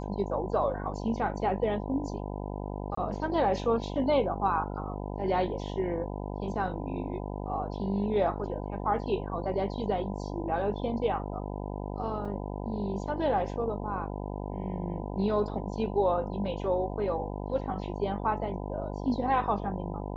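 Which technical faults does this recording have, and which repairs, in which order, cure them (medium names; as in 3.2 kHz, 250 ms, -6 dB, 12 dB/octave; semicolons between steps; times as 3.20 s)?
buzz 50 Hz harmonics 20 -36 dBFS
2.95–2.97 s: dropout 24 ms
12.25 s: dropout 4 ms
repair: de-hum 50 Hz, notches 20; interpolate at 2.95 s, 24 ms; interpolate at 12.25 s, 4 ms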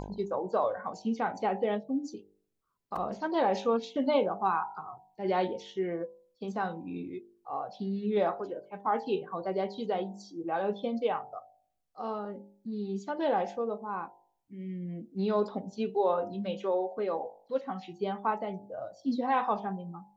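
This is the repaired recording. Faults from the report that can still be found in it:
nothing left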